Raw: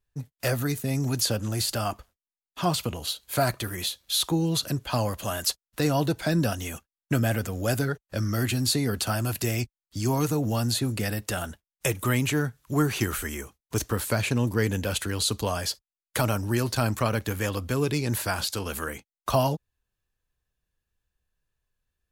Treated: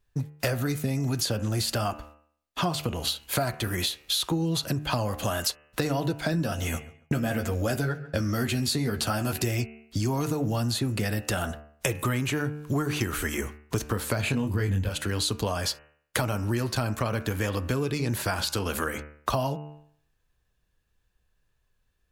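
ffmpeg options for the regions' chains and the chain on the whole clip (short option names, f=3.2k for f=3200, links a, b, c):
-filter_complex "[0:a]asettb=1/sr,asplit=3[a][b][c];[a]atrim=end=6.324[d];[b]atrim=start=6.32:end=9.42,asetpts=PTS-STARTPTS,afade=t=in:d=0.004:c=qsin,afade=t=out:st=3.096:d=0.004:c=qsin,agate=range=-33dB:threshold=-37dB:ratio=3:release=100:detection=peak,asplit=2[e][f];[f]adelay=13,volume=-6dB[g];[e][g]amix=inputs=2:normalize=0,atrim=end_sample=136710,asplit=2[h][i];[i]adelay=140,lowpass=f=2.9k:p=1,volume=-22dB,asplit=2[j][k];[k]adelay=140,lowpass=f=2.9k:p=1,volume=0.27[l];[h][j][l]amix=inputs=3:normalize=0,atrim=end_sample=136710[m];[c]atrim=start=9.416[n];[d][m]acrossfade=d=0.004:c1=hsin:c2=qsin[o];[o][n]acrossfade=d=0.004:c1=qsin:c2=hsin,asettb=1/sr,asplit=3[p][q][r];[p]atrim=end=14.214[s];[q]atrim=start=14.21:end=14.89,asetpts=PTS-STARTPTS,afade=t=in:d=0.004:c=qsin,afade=t=out:st=0.676:d=0.004:c=qsin,bandreject=f=5.7k:w=5.8,asubboost=boost=11.5:cutoff=200,asplit=2[t][u];[u]adelay=21,volume=-4dB[v];[t][v]amix=inputs=2:normalize=0,atrim=end_sample=29988[w];[r]atrim=start=14.886[x];[s][w]acrossfade=d=0.004:c1=hsin:c2=qsin[y];[y][x]acrossfade=d=0.004:c1=qsin:c2=hsin,highshelf=f=5.8k:g=-6,bandreject=f=74.64:t=h:w=4,bandreject=f=149.28:t=h:w=4,bandreject=f=223.92:t=h:w=4,bandreject=f=298.56:t=h:w=4,bandreject=f=373.2:t=h:w=4,bandreject=f=447.84:t=h:w=4,bandreject=f=522.48:t=h:w=4,bandreject=f=597.12:t=h:w=4,bandreject=f=671.76:t=h:w=4,bandreject=f=746.4:t=h:w=4,bandreject=f=821.04:t=h:w=4,bandreject=f=895.68:t=h:w=4,bandreject=f=970.32:t=h:w=4,bandreject=f=1.04496k:t=h:w=4,bandreject=f=1.1196k:t=h:w=4,bandreject=f=1.19424k:t=h:w=4,bandreject=f=1.26888k:t=h:w=4,bandreject=f=1.34352k:t=h:w=4,bandreject=f=1.41816k:t=h:w=4,bandreject=f=1.4928k:t=h:w=4,bandreject=f=1.56744k:t=h:w=4,bandreject=f=1.64208k:t=h:w=4,bandreject=f=1.71672k:t=h:w=4,bandreject=f=1.79136k:t=h:w=4,bandreject=f=1.866k:t=h:w=4,bandreject=f=1.94064k:t=h:w=4,bandreject=f=2.01528k:t=h:w=4,bandreject=f=2.08992k:t=h:w=4,bandreject=f=2.16456k:t=h:w=4,bandreject=f=2.2392k:t=h:w=4,bandreject=f=2.31384k:t=h:w=4,bandreject=f=2.38848k:t=h:w=4,bandreject=f=2.46312k:t=h:w=4,bandreject=f=2.53776k:t=h:w=4,bandreject=f=2.6124k:t=h:w=4,bandreject=f=2.68704k:t=h:w=4,bandreject=f=2.76168k:t=h:w=4,bandreject=f=2.83632k:t=h:w=4,bandreject=f=2.91096k:t=h:w=4,bandreject=f=2.9856k:t=h:w=4,acompressor=threshold=-33dB:ratio=6,volume=8.5dB"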